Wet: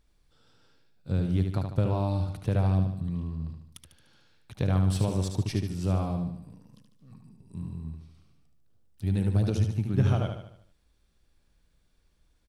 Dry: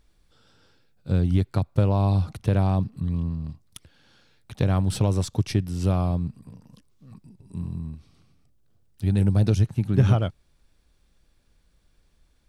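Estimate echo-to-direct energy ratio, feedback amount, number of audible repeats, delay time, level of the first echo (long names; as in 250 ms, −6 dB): −5.0 dB, 48%, 5, 74 ms, −6.0 dB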